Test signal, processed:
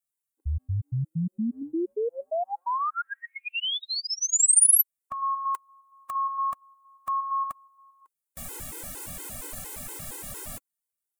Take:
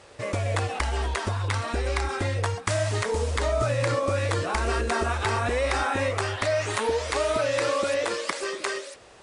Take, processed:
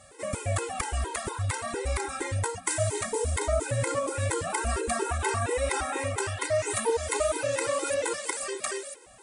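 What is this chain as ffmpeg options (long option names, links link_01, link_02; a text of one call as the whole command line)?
ffmpeg -i in.wav -af "highshelf=frequency=6600:width_type=q:width=1.5:gain=9.5,afftfilt=real='re*gt(sin(2*PI*4.3*pts/sr)*(1-2*mod(floor(b*sr/1024/270),2)),0)':imag='im*gt(sin(2*PI*4.3*pts/sr)*(1-2*mod(floor(b*sr/1024/270),2)),0)':win_size=1024:overlap=0.75" out.wav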